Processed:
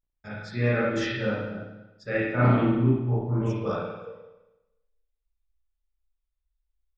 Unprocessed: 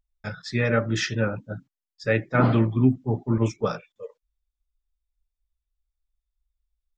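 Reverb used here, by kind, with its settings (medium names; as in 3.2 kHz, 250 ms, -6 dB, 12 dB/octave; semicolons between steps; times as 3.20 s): spring tank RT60 1 s, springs 33/48 ms, chirp 25 ms, DRR -9 dB; trim -11 dB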